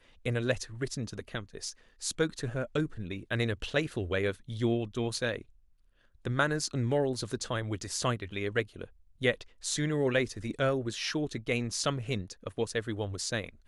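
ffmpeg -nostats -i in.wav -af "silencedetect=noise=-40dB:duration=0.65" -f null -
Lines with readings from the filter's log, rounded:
silence_start: 5.41
silence_end: 6.25 | silence_duration: 0.84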